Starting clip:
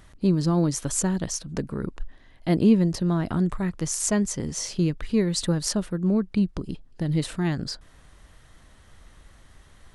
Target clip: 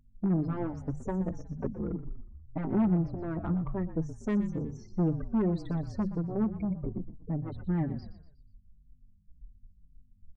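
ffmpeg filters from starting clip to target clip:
-filter_complex "[0:a]bandreject=f=50:t=h:w=6,bandreject=f=100:t=h:w=6,bandreject=f=150:t=h:w=6,bandreject=f=200:t=h:w=6,bandreject=f=250:t=h:w=6,afftfilt=real='re*gte(hypot(re,im),0.0398)':imag='im*gte(hypot(re,im),0.0398)':win_size=1024:overlap=0.75,lowpass=1.1k,adynamicequalizer=threshold=0.0282:dfrequency=180:dqfactor=0.8:tfrequency=180:tqfactor=0.8:attack=5:release=100:ratio=0.375:range=1.5:mode=cutabove:tftype=bell,asplit=2[a][b];[b]acompressor=threshold=-34dB:ratio=20,volume=-3dB[c];[a][c]amix=inputs=2:normalize=0,asoftclip=type=tanh:threshold=-21.5dB,aeval=exprs='val(0)+0.000794*(sin(2*PI*50*n/s)+sin(2*PI*2*50*n/s)/2+sin(2*PI*3*50*n/s)/3+sin(2*PI*4*50*n/s)/4+sin(2*PI*5*50*n/s)/5)':c=same,atempo=0.96,asplit=5[d][e][f][g][h];[e]adelay=121,afreqshift=-44,volume=-13dB[i];[f]adelay=242,afreqshift=-88,volume=-19.9dB[j];[g]adelay=363,afreqshift=-132,volume=-26.9dB[k];[h]adelay=484,afreqshift=-176,volume=-33.8dB[l];[d][i][j][k][l]amix=inputs=5:normalize=0,asplit=2[m][n];[n]adelay=4.7,afreqshift=-1.9[o];[m][o]amix=inputs=2:normalize=1"

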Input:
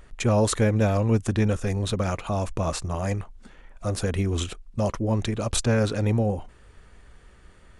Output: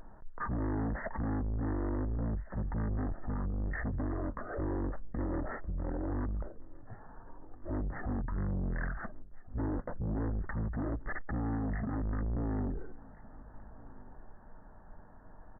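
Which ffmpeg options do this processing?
-af "alimiter=limit=-16dB:level=0:latency=1:release=36,aresample=8000,asoftclip=type=tanh:threshold=-31.5dB,aresample=44100,aecho=1:1:706:0.0794,asetrate=22050,aresample=44100"

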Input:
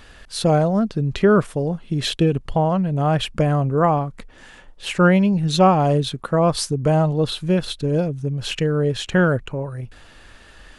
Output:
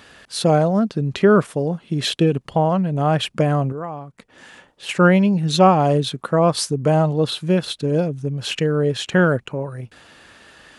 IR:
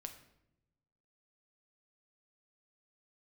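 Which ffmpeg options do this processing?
-filter_complex "[0:a]highpass=130,asettb=1/sr,asplit=3[a][b][c];[a]atrim=end=3.724[d];[b]atrim=start=3.72:end=4.89,asetpts=PTS-STARTPTS,afade=t=in:d=0.004:c=qsin,afade=t=out:st=1.166:d=0.004:c=qsin,acompressor=threshold=-39dB:ratio=2[e];[c]atrim=start=4.886[f];[d][e]acrossfade=d=0.004:c1=hsin:c2=qsin[g];[g][f]acrossfade=d=0.004:c1=qsin:c2=hsin,volume=1.5dB"

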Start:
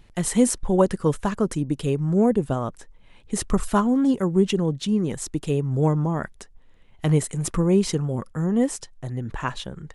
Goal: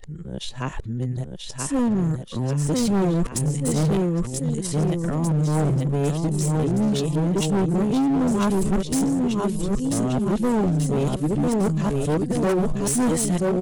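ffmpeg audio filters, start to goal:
-filter_complex "[0:a]areverse,equalizer=f=1.3k:w=0.91:g=-10,asplit=2[a][b];[b]aecho=0:1:720|1368|1951|2476|2948:0.631|0.398|0.251|0.158|0.1[c];[a][c]amix=inputs=2:normalize=0,atempo=0.73,asoftclip=type=hard:threshold=-21dB,volume=3dB"

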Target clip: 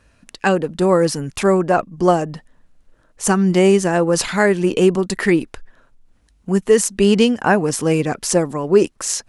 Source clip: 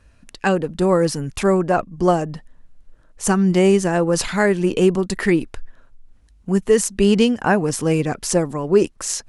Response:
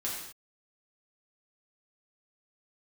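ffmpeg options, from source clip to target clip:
-af "lowshelf=f=91:g=-10,volume=2.5dB"

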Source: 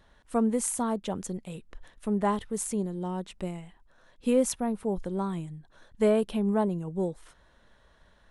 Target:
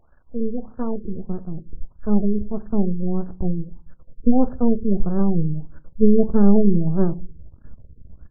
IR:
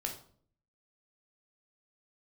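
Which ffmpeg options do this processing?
-filter_complex "[0:a]asubboost=boost=10:cutoff=240,lowpass=f=3.2k:t=q:w=15,aeval=exprs='max(val(0),0)':c=same,asplit=2[a][b];[1:a]atrim=start_sample=2205,asetrate=61740,aresample=44100[c];[b][c]afir=irnorm=-1:irlink=0,volume=-5dB[d];[a][d]amix=inputs=2:normalize=0,afftfilt=real='re*lt(b*sr/1024,490*pow(1800/490,0.5+0.5*sin(2*PI*1.6*pts/sr)))':imag='im*lt(b*sr/1024,490*pow(1800/490,0.5+0.5*sin(2*PI*1.6*pts/sr)))':win_size=1024:overlap=0.75,volume=1.5dB"

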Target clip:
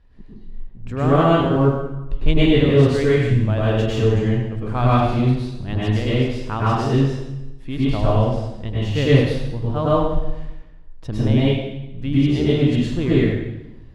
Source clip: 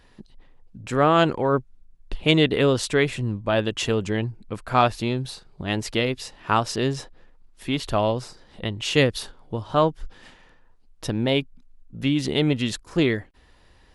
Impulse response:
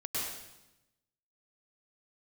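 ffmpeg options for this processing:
-filter_complex "[0:a]aemphasis=mode=reproduction:type=bsi,asplit=2[a][b];[b]aeval=exprs='sgn(val(0))*max(abs(val(0))-0.0158,0)':c=same,volume=-6dB[c];[a][c]amix=inputs=2:normalize=0[d];[1:a]atrim=start_sample=2205[e];[d][e]afir=irnorm=-1:irlink=0,volume=-7dB"

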